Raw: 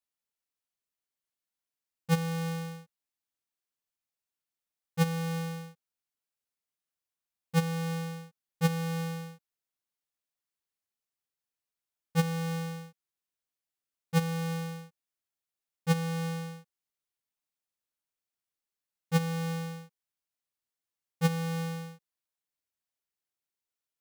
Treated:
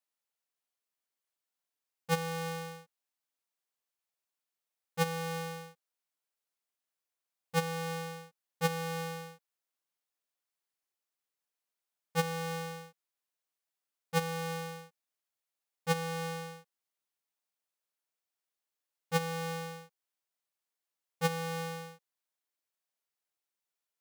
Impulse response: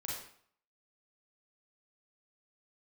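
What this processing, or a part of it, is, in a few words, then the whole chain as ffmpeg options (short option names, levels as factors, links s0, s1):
filter by subtraction: -filter_complex "[0:a]asplit=2[s0][s1];[s1]lowpass=600,volume=-1[s2];[s0][s2]amix=inputs=2:normalize=0"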